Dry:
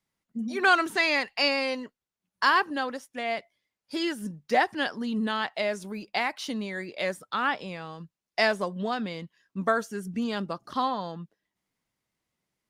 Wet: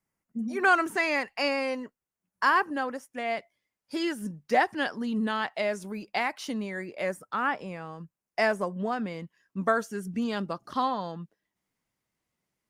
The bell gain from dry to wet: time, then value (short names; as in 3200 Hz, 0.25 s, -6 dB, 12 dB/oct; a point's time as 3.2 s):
bell 3800 Hz 0.79 oct
2.94 s -12.5 dB
3.34 s -5.5 dB
6.44 s -5.5 dB
6.98 s -14.5 dB
8.88 s -14.5 dB
9.82 s -3 dB